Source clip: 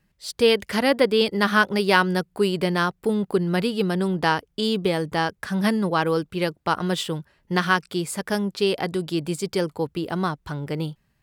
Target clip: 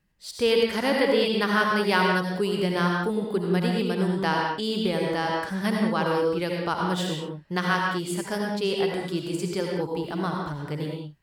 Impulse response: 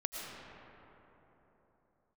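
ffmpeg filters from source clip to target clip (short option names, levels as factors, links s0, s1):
-filter_complex "[1:a]atrim=start_sample=2205,afade=t=out:st=0.38:d=0.01,atrim=end_sample=17199,asetrate=66150,aresample=44100[s0];[0:a][s0]afir=irnorm=-1:irlink=0"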